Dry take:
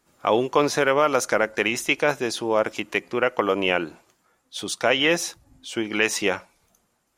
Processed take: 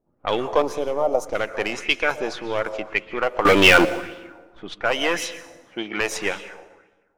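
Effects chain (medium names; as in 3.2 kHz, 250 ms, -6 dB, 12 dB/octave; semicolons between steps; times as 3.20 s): partial rectifier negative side -7 dB; level-controlled noise filter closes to 450 Hz, open at -21 dBFS; 0.62–1.35 s: FFT filter 790 Hz 0 dB, 1.6 kHz -22 dB, 6.2 kHz -7 dB; 3.45–3.85 s: waveshaping leveller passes 5; 5.19–6.01 s: high-pass 110 Hz; plate-style reverb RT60 1.3 s, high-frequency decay 0.7×, pre-delay 110 ms, DRR 13.5 dB; sweeping bell 1.8 Hz 610–3400 Hz +10 dB; trim -1 dB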